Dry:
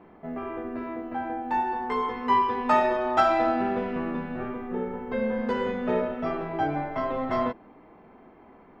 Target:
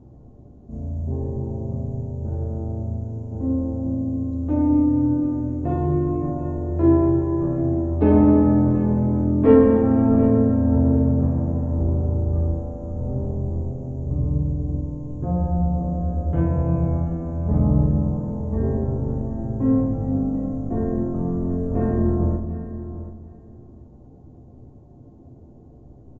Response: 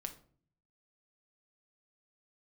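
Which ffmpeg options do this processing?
-filter_complex "[0:a]aecho=1:1:247|494:0.2|0.0319[a];[1:a]atrim=start_sample=2205[b];[a][b]afir=irnorm=-1:irlink=0,asetrate=14818,aresample=44100,volume=8.5dB"

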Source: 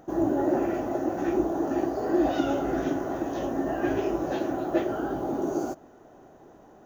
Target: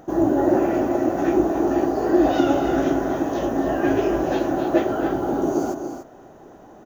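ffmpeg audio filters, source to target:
-af "aecho=1:1:252|289:0.251|0.316,volume=6dB"

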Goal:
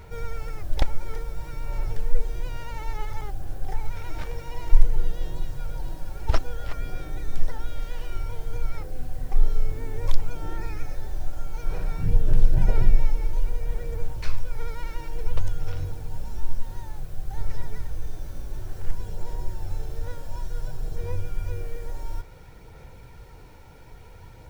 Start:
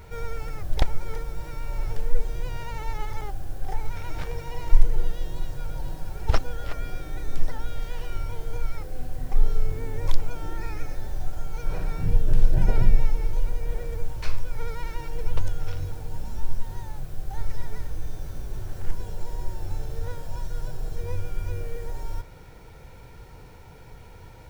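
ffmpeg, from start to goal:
-af "aphaser=in_gain=1:out_gain=1:delay=3.6:decay=0.23:speed=0.57:type=sinusoidal,volume=-1.5dB"

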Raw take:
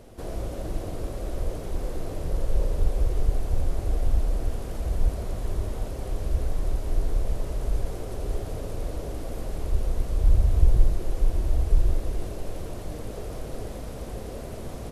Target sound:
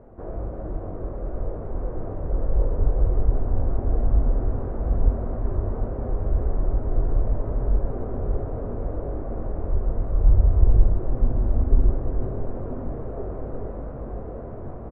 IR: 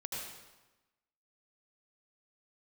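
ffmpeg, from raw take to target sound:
-filter_complex "[0:a]lowpass=f=1.4k:w=0.5412,lowpass=f=1.4k:w=1.3066,asplit=2[a][b];[b]adelay=22,volume=-7dB[c];[a][c]amix=inputs=2:normalize=0,dynaudnorm=f=980:g=5:m=3.5dB,asplit=6[d][e][f][g][h][i];[e]adelay=485,afreqshift=-140,volume=-19.5dB[j];[f]adelay=970,afreqshift=-280,volume=-23.9dB[k];[g]adelay=1455,afreqshift=-420,volume=-28.4dB[l];[h]adelay=1940,afreqshift=-560,volume=-32.8dB[m];[i]adelay=2425,afreqshift=-700,volume=-37.2dB[n];[d][j][k][l][m][n]amix=inputs=6:normalize=0"

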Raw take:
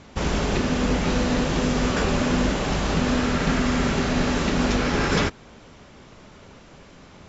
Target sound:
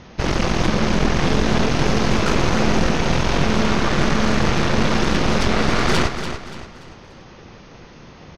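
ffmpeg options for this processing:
-af "asetrate=38367,aresample=44100,aeval=exprs='0.376*(cos(1*acos(clip(val(0)/0.376,-1,1)))-cos(1*PI/2))+0.133*(cos(5*acos(clip(val(0)/0.376,-1,1)))-cos(5*PI/2))+0.168*(cos(6*acos(clip(val(0)/0.376,-1,1)))-cos(6*PI/2))':c=same,aecho=1:1:289|578|867|1156:0.355|0.135|0.0512|0.0195,volume=-4.5dB"

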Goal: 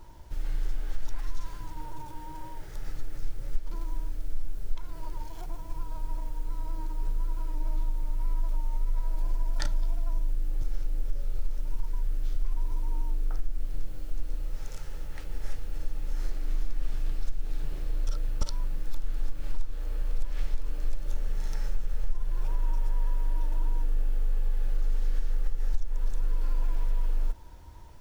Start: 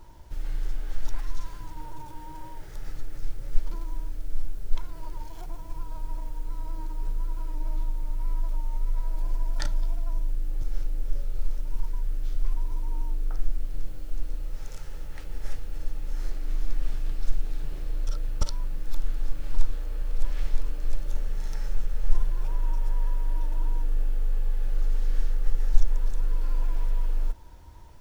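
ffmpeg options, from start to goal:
-af "acompressor=threshold=-19dB:ratio=6"

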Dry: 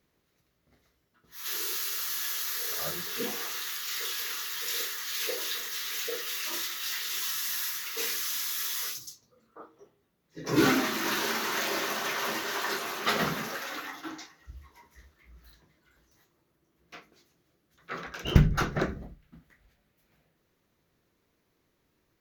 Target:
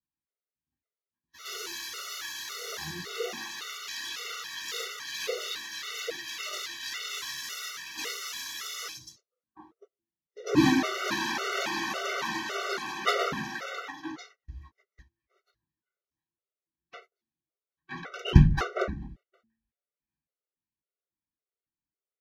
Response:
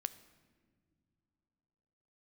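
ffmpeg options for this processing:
-af "agate=range=-28dB:threshold=-52dB:ratio=16:detection=peak,adynamicsmooth=sensitivity=3:basefreq=6.2k,bandreject=f=112.2:t=h:w=4,bandreject=f=224.4:t=h:w=4,bandreject=f=336.6:t=h:w=4,afftfilt=real='re*gt(sin(2*PI*1.8*pts/sr)*(1-2*mod(floor(b*sr/1024/380),2)),0)':imag='im*gt(sin(2*PI*1.8*pts/sr)*(1-2*mod(floor(b*sr/1024/380),2)),0)':win_size=1024:overlap=0.75,volume=3.5dB"

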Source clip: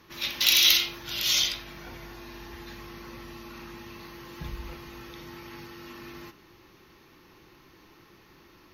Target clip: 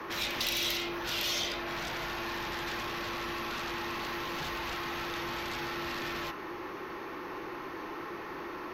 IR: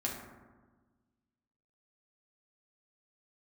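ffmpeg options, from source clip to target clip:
-filter_complex "[0:a]acrossover=split=230|770[a][b][c];[a]acompressor=threshold=-54dB:ratio=4[d];[b]acompressor=threshold=-54dB:ratio=4[e];[c]acompressor=threshold=-39dB:ratio=4[f];[d][e][f]amix=inputs=3:normalize=0,acrossover=split=310|2000[g][h][i];[h]aeval=exprs='0.0126*sin(PI/2*4.47*val(0)/0.0126)':c=same[j];[g][j][i]amix=inputs=3:normalize=0,volume=3.5dB"

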